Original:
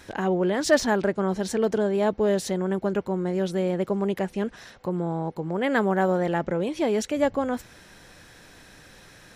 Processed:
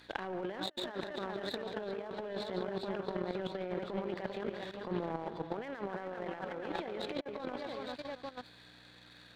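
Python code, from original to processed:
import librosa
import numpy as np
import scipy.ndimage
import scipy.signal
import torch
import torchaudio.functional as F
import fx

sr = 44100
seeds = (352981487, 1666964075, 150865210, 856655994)

y = fx.freq_compress(x, sr, knee_hz=3300.0, ratio=4.0)
y = fx.add_hum(y, sr, base_hz=60, snr_db=18)
y = fx.echo_multitap(y, sr, ms=(143, 335, 373, 393, 664, 866), db=(-11.5, -19.5, -18.0, -8.5, -16.5, -11.5))
y = fx.level_steps(y, sr, step_db=9)
y = fx.env_lowpass_down(y, sr, base_hz=2900.0, full_db=-23.5)
y = fx.highpass(y, sr, hz=510.0, slope=6)
y = fx.power_curve(y, sr, exponent=1.4)
y = fx.over_compress(y, sr, threshold_db=-41.0, ratio=-0.5)
y = F.gain(torch.from_numpy(y), 3.0).numpy()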